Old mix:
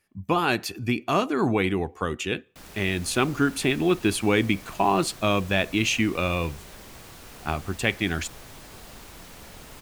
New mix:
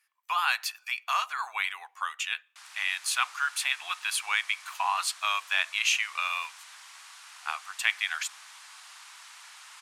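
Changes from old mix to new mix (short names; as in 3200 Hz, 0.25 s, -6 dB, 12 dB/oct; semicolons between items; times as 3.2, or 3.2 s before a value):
background: add LPF 10000 Hz 24 dB/oct; master: add steep high-pass 960 Hz 36 dB/oct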